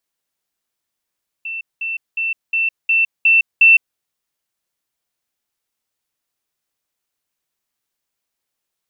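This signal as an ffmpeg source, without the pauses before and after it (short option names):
-f lavfi -i "aevalsrc='pow(10,(-23.5+3*floor(t/0.36))/20)*sin(2*PI*2680*t)*clip(min(mod(t,0.36),0.16-mod(t,0.36))/0.005,0,1)':d=2.52:s=44100"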